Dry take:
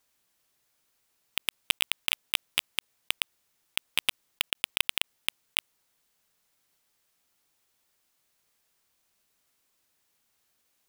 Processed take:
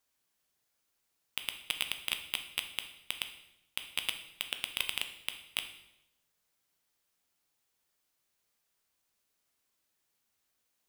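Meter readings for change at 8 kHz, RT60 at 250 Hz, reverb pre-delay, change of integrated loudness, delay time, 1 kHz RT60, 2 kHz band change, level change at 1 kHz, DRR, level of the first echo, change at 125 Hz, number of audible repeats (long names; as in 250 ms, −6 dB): −6.0 dB, 1.0 s, 7 ms, −6.0 dB, no echo audible, 0.80 s, −6.0 dB, −6.0 dB, 6.5 dB, no echo audible, −6.0 dB, no echo audible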